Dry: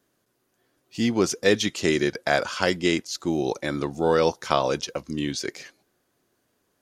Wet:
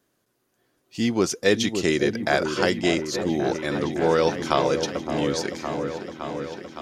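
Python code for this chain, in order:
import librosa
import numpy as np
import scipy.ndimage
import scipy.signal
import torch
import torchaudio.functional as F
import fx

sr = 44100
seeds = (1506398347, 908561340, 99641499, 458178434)

y = fx.echo_opening(x, sr, ms=564, hz=750, octaves=1, feedback_pct=70, wet_db=-6)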